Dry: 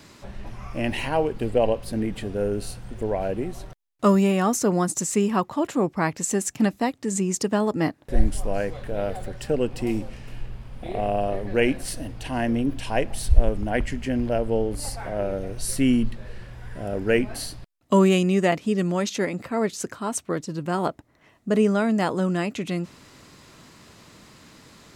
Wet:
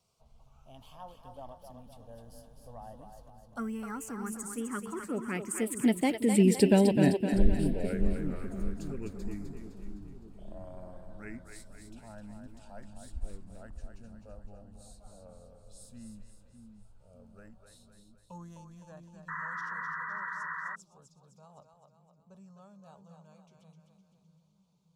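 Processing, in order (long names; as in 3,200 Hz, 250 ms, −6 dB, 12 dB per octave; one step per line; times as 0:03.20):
source passing by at 0:06.51, 40 m/s, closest 13 metres
phaser swept by the level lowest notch 300 Hz, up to 1,200 Hz, full sweep at −30 dBFS
echo with a time of its own for lows and highs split 360 Hz, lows 606 ms, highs 256 ms, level −6 dB
sound drawn into the spectrogram noise, 0:19.28–0:20.76, 930–2,000 Hz −42 dBFS
level +4 dB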